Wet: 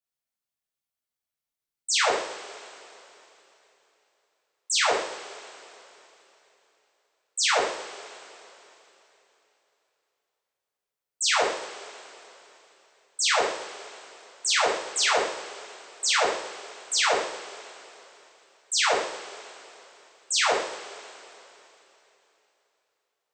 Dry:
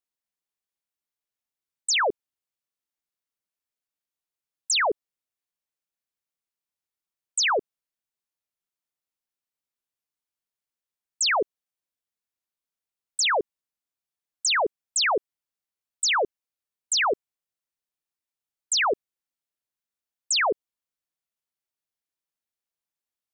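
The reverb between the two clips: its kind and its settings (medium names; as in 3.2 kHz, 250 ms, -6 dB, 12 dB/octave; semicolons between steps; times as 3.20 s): two-slope reverb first 0.64 s, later 3.4 s, from -18 dB, DRR -7 dB; trim -7.5 dB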